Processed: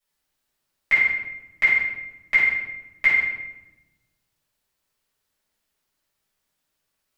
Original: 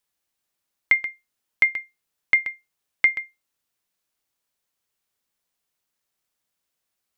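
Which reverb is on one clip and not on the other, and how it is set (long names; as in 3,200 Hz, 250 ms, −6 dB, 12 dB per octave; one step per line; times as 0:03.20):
rectangular room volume 410 cubic metres, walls mixed, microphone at 6.3 metres
level −9 dB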